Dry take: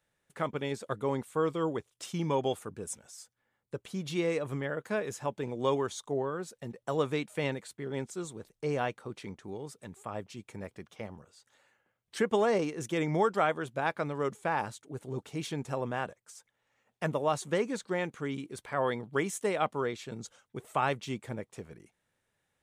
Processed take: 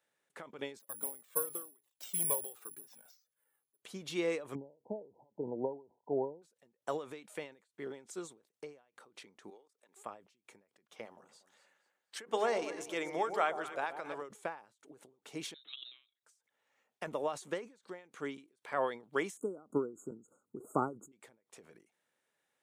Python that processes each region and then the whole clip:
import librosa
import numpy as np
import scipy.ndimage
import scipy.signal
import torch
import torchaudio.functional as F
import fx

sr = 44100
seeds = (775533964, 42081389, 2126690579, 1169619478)

y = fx.chain(x, sr, fx.resample_bad(factor=4, down='filtered', up='zero_stuff'),
    fx.comb_cascade(direction='falling', hz=1.0), at=(0.79, 3.82))
y = fx.chain(y, sr, fx.brickwall_lowpass(high_hz=1000.0),
    fx.low_shelf(hz=220.0, db=8.0), at=(4.55, 6.42))
y = fx.chain(y, sr, fx.highpass(hz=430.0, slope=12),
    fx.level_steps(step_db=17), at=(9.5, 9.96))
y = fx.chain(y, sr, fx.low_shelf(hz=310.0, db=-10.0),
    fx.hum_notches(base_hz=50, count=8),
    fx.echo_alternate(ms=119, hz=890.0, feedback_pct=56, wet_db=-8.5), at=(11.05, 14.22))
y = fx.chain(y, sr, fx.freq_invert(carrier_hz=3900),
    fx.peak_eq(hz=340.0, db=9.0, octaves=1.1),
    fx.level_steps(step_db=16), at=(15.54, 16.23))
y = fx.chain(y, sr, fx.brickwall_bandstop(low_hz=1500.0, high_hz=6500.0),
    fx.low_shelf_res(hz=470.0, db=12.5, q=1.5), at=(19.37, 21.12))
y = scipy.signal.sosfilt(scipy.signal.butter(2, 280.0, 'highpass', fs=sr, output='sos'), y)
y = fx.end_taper(y, sr, db_per_s=150.0)
y = F.gain(torch.from_numpy(y), -2.0).numpy()